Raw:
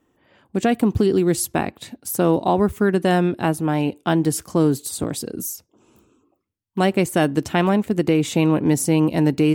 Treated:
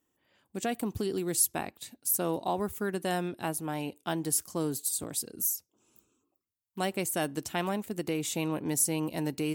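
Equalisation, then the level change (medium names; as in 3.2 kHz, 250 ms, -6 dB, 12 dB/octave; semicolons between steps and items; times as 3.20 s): pre-emphasis filter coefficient 0.8; dynamic bell 780 Hz, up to +4 dB, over -41 dBFS, Q 0.77; -2.0 dB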